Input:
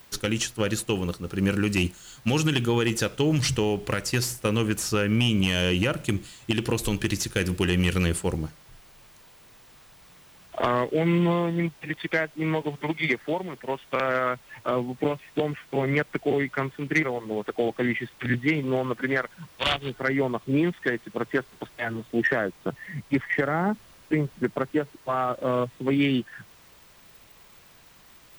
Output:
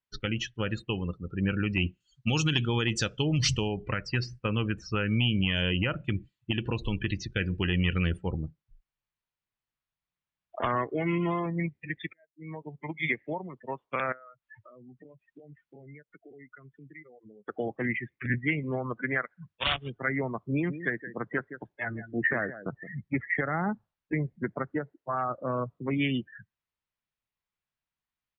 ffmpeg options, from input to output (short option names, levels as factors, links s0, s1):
-filter_complex "[0:a]asettb=1/sr,asplit=3[s0][s1][s2];[s0]atrim=end=2.004[s3];[s1]atrim=start=2:end=3.68,asetpts=PTS-STARTPTS,afade=t=in:d=0.004:c=qsin,afade=t=out:st=1.676:d=0.004:c=qsin,bass=f=250:g=1,treble=f=4000:g=11[s4];[s2]atrim=start=3.676[s5];[s3][s4]acrossfade=d=0.004:c1=hsin:c2=qsin[s6];[s6][s5]acrossfade=d=0.004:c1=qsin:c2=hsin,asettb=1/sr,asplit=3[s7][s8][s9];[s7]atrim=end=10.754[s10];[s8]atrim=start=10.75:end=11.46,asetpts=PTS-STARTPTS,afade=t=in:d=0.004:c=qsin,afade=t=out:st=0.706:d=0.004:c=qsin,aecho=1:1:2.8:0.39,atrim=end_sample=31311[s11];[s9]atrim=start=11.456[s12];[s10][s11]acrossfade=d=0.004:c1=hsin:c2=qsin[s13];[s13][s12]acrossfade=d=0.004:c1=qsin:c2=hsin,asettb=1/sr,asplit=3[s14][s15][s16];[s14]atrim=end=14.124[s17];[s15]atrim=start=14.12:end=17.48,asetpts=PTS-STARTPTS,afade=t=in:d=0.004:c=qsin,afade=t=out:st=3.356:d=0.004:c=qsin,acompressor=threshold=0.01:ratio=6:attack=3.2:release=140:knee=1:detection=peak[s18];[s16]atrim=start=17.476[s19];[s17][s18]acrossfade=d=0.004:c1=hsin:c2=qsin[s20];[s20][s19]acrossfade=d=0.004:c1=qsin:c2=hsin,asplit=3[s21][s22][s23];[s21]afade=t=out:st=20.68:d=0.02[s24];[s22]aecho=1:1:168:0.282,afade=t=in:st=20.68:d=0.02,afade=t=out:st=22.9:d=0.02[s25];[s23]afade=t=in:st=22.9:d=0.02[s26];[s24][s25][s26]amix=inputs=3:normalize=0,asplit=2[s27][s28];[s27]atrim=end=12.13,asetpts=PTS-STARTPTS,afade=t=out:st=12.126:d=0.004:c=hsin[s29];[s28]atrim=start=12.13,asetpts=PTS-STARTPTS,afade=t=in:d=1.06[s30];[s29][s30]concat=n=2:v=0:a=1,lowpass=4100,afftdn=nr=35:nf=-34,equalizer=f=420:w=0.66:g=-7,volume=0.891"